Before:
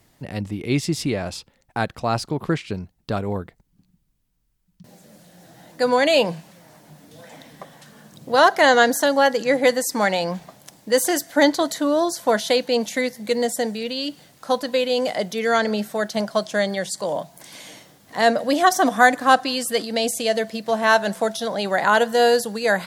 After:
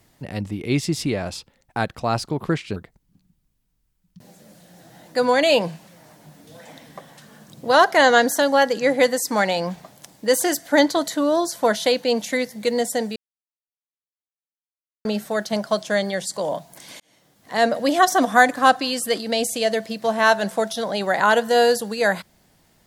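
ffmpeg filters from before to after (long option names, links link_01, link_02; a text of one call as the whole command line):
ffmpeg -i in.wav -filter_complex "[0:a]asplit=5[link_01][link_02][link_03][link_04][link_05];[link_01]atrim=end=2.762[link_06];[link_02]atrim=start=3.398:end=13.8,asetpts=PTS-STARTPTS,afade=type=out:start_time=10.398:duration=0.004:curve=hsin[link_07];[link_03]atrim=start=13.8:end=15.69,asetpts=PTS-STARTPTS,volume=0[link_08];[link_04]atrim=start=15.69:end=17.64,asetpts=PTS-STARTPTS,afade=type=in:duration=0.004:curve=hsin,afade=type=out:start_time=1.946:duration=0.004:curve=hsin[link_09];[link_05]atrim=start=17.64,asetpts=PTS-STARTPTS,afade=type=in:duration=0.74[link_10];[link_07][link_08][link_09][link_10]concat=n=4:v=0:a=1[link_11];[link_06][link_11]acrossfade=duration=0.004:curve1=hsin:curve2=hsin" out.wav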